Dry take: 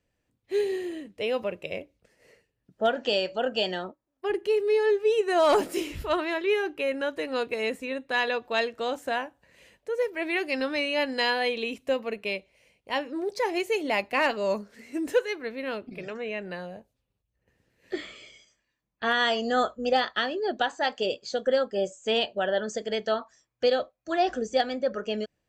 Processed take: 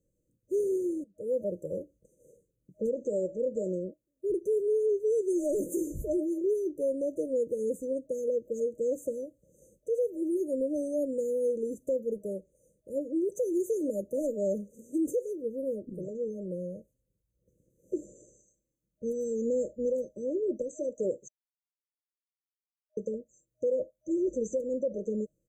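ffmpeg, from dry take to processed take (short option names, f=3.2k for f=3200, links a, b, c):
-filter_complex "[0:a]asplit=4[a][b][c][d];[a]atrim=end=1.04,asetpts=PTS-STARTPTS,afade=t=out:st=1.036:d=0.004:c=hsin:silence=0.0749894[e];[b]atrim=start=1.04:end=21.28,asetpts=PTS-STARTPTS,afade=t=in:d=0.47:silence=0.0749894,afade=t=out:st=20.236:d=0.004:c=hsin[f];[c]atrim=start=21.28:end=22.97,asetpts=PTS-STARTPTS,volume=0[g];[d]atrim=start=22.97,asetpts=PTS-STARTPTS,afade=t=in:d=0.004:c=hsin[h];[e][f][g][h]concat=n=4:v=0:a=1,afftfilt=real='re*(1-between(b*sr/4096,620,6000))':imag='im*(1-between(b*sr/4096,620,6000))':win_size=4096:overlap=0.75,aecho=1:1:6:0.32,alimiter=limit=-23dB:level=0:latency=1:release=88,volume=1dB"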